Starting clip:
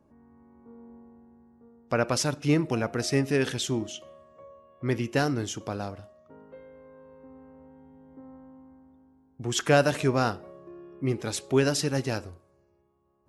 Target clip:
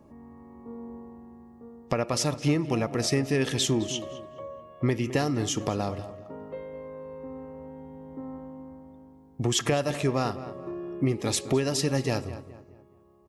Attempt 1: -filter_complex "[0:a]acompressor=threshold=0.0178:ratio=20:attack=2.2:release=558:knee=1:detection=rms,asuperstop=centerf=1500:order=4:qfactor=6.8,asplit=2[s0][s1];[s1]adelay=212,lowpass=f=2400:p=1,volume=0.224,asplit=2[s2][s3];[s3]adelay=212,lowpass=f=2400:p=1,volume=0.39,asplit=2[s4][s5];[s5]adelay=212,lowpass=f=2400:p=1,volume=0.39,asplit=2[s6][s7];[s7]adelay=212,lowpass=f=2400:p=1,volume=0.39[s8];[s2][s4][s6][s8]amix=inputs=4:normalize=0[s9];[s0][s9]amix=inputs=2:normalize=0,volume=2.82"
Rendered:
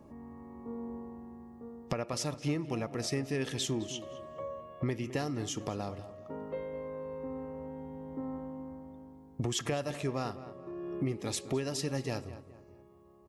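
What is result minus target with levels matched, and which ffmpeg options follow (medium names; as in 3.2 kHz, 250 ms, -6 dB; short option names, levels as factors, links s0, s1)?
compression: peak gain reduction +8 dB
-filter_complex "[0:a]acompressor=threshold=0.0473:ratio=20:attack=2.2:release=558:knee=1:detection=rms,asuperstop=centerf=1500:order=4:qfactor=6.8,asplit=2[s0][s1];[s1]adelay=212,lowpass=f=2400:p=1,volume=0.224,asplit=2[s2][s3];[s3]adelay=212,lowpass=f=2400:p=1,volume=0.39,asplit=2[s4][s5];[s5]adelay=212,lowpass=f=2400:p=1,volume=0.39,asplit=2[s6][s7];[s7]adelay=212,lowpass=f=2400:p=1,volume=0.39[s8];[s2][s4][s6][s8]amix=inputs=4:normalize=0[s9];[s0][s9]amix=inputs=2:normalize=0,volume=2.82"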